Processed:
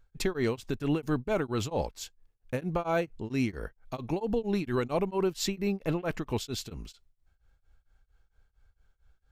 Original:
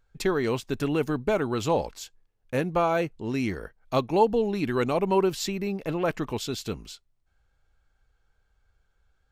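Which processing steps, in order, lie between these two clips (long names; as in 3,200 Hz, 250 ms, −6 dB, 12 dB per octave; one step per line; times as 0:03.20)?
low-shelf EQ 120 Hz +7 dB
brickwall limiter −17.5 dBFS, peak gain reduction 8.5 dB
tremolo along a rectified sine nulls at 4.4 Hz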